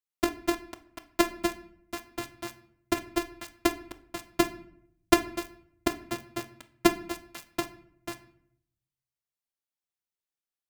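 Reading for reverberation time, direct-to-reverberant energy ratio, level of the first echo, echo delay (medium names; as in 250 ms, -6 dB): 0.70 s, 10.0 dB, no echo, no echo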